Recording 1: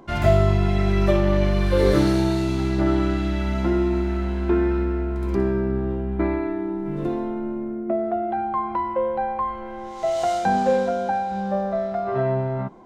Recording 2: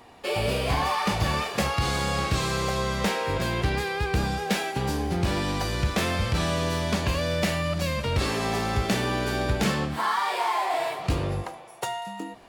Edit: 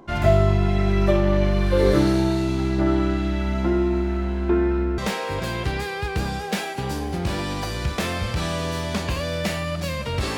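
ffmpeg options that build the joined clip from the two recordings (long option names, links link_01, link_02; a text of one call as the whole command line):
ffmpeg -i cue0.wav -i cue1.wav -filter_complex "[0:a]apad=whole_dur=10.37,atrim=end=10.37,atrim=end=4.982[link_01];[1:a]atrim=start=2.958:end=8.35[link_02];[link_01][link_02]acrossfade=duration=0.004:curve1=hsin:curve2=hsin" out.wav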